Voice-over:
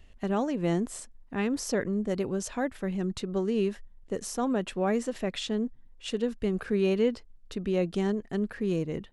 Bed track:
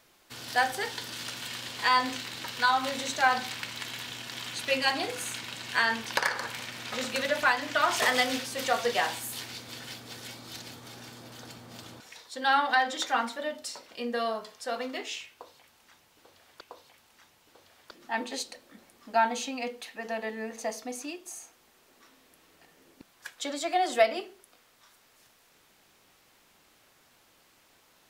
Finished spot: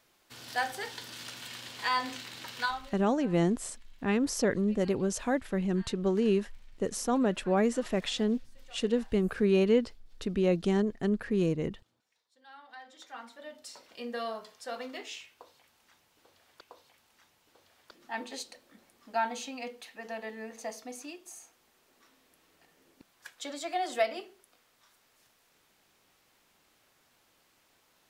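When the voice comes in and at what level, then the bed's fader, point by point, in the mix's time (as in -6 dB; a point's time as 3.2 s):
2.70 s, +1.0 dB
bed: 2.64 s -5.5 dB
3.05 s -29.5 dB
12.47 s -29.5 dB
13.85 s -5.5 dB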